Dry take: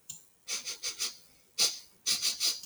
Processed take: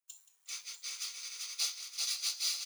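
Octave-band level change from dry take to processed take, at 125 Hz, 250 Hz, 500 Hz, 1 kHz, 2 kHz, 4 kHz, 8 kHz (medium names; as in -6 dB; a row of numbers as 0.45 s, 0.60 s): no reading, under -25 dB, under -15 dB, -6.0 dB, -4.5 dB, -4.5 dB, -4.5 dB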